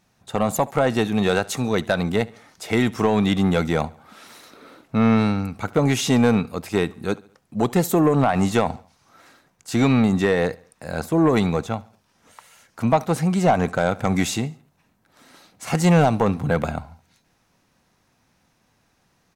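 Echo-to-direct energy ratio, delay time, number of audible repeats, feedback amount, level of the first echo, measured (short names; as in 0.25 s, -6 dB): -22.0 dB, 71 ms, 2, 46%, -23.0 dB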